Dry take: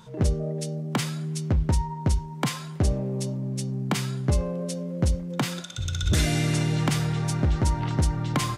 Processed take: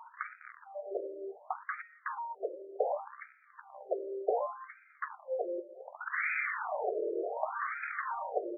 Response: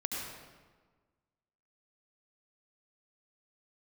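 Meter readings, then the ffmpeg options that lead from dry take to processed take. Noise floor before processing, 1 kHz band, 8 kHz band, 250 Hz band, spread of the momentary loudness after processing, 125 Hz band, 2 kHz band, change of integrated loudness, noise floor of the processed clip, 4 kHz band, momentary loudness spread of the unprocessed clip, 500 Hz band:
−37 dBFS, −2.5 dB, below −40 dB, −21.0 dB, 15 LU, below −40 dB, −1.0 dB, −10.0 dB, −62 dBFS, below −40 dB, 6 LU, −1.5 dB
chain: -af "aeval=exprs='0.0708*(abs(mod(val(0)/0.0708+3,4)-2)-1)':channel_layout=same,afftfilt=real='re*between(b*sr/1024,430*pow(1800/430,0.5+0.5*sin(2*PI*0.67*pts/sr))/1.41,430*pow(1800/430,0.5+0.5*sin(2*PI*0.67*pts/sr))*1.41)':imag='im*between(b*sr/1024,430*pow(1800/430,0.5+0.5*sin(2*PI*0.67*pts/sr))/1.41,430*pow(1800/430,0.5+0.5*sin(2*PI*0.67*pts/sr))*1.41)':win_size=1024:overlap=0.75,volume=6dB"

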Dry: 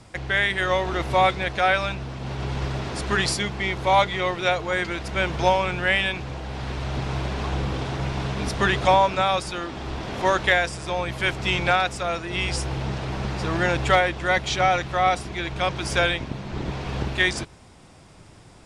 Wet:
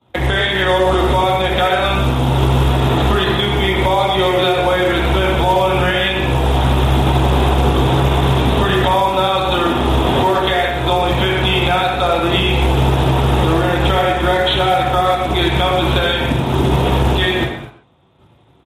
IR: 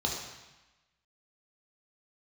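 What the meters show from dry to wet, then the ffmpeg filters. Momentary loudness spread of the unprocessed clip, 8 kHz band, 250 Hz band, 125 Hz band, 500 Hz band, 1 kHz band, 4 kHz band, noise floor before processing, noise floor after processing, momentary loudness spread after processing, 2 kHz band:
11 LU, +1.5 dB, +12.5 dB, +13.0 dB, +9.5 dB, +7.5 dB, +10.0 dB, −49 dBFS, −48 dBFS, 2 LU, +4.0 dB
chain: -filter_complex "[0:a]agate=range=-33dB:threshold=-35dB:ratio=3:detection=peak,lowshelf=frequency=110:gain=-7.5,acompressor=threshold=-27dB:ratio=20,aresample=8000,aresample=44100[link_01];[1:a]atrim=start_sample=2205,afade=type=out:start_time=0.32:duration=0.01,atrim=end_sample=14553[link_02];[link_01][link_02]afir=irnorm=-1:irlink=0,acrusher=bits=6:mode=log:mix=0:aa=0.000001,asplit=2[link_03][link_04];[link_04]adelay=120,highpass=300,lowpass=3400,asoftclip=type=hard:threshold=-15.5dB,volume=-10dB[link_05];[link_03][link_05]amix=inputs=2:normalize=0,alimiter=level_in=13.5dB:limit=-1dB:release=50:level=0:latency=1,volume=-3.5dB" -ar 44100 -c:a libmp3lame -b:a 56k

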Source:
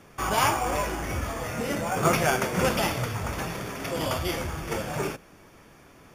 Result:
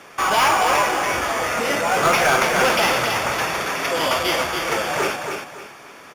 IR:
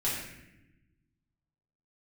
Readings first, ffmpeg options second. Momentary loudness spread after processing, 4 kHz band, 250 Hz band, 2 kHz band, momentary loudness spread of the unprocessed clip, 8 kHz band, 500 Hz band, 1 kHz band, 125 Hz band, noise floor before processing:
7 LU, +10.5 dB, +1.5 dB, +11.0 dB, 9 LU, +7.0 dB, +7.0 dB, +9.5 dB, −4.0 dB, −53 dBFS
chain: -filter_complex "[0:a]lowshelf=frequency=230:gain=-6,asplit=2[link_01][link_02];[link_02]highpass=frequency=720:poles=1,volume=19dB,asoftclip=type=tanh:threshold=-8dB[link_03];[link_01][link_03]amix=inputs=2:normalize=0,lowpass=frequency=5500:poles=1,volume=-6dB,aecho=1:1:280|560|840|1120:0.531|0.154|0.0446|0.0129"

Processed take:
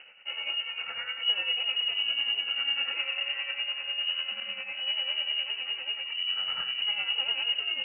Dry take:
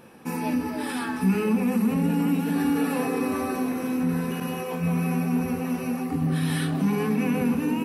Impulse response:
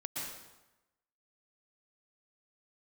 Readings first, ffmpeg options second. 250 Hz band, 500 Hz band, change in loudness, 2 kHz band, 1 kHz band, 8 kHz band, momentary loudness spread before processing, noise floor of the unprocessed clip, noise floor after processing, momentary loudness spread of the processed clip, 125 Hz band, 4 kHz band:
below −40 dB, −20.5 dB, −3.0 dB, +3.5 dB, −14.0 dB, below −40 dB, 6 LU, −32 dBFS, −41 dBFS, 6 LU, below −40 dB, +18.5 dB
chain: -af "areverse,acompressor=mode=upward:threshold=-30dB:ratio=2.5,areverse,tremolo=f=10:d=0.55,lowpass=frequency=2600:width_type=q:width=0.5098,lowpass=frequency=2600:width_type=q:width=0.6013,lowpass=frequency=2600:width_type=q:width=0.9,lowpass=frequency=2600:width_type=q:width=2.563,afreqshift=-3100,volume=-4dB"

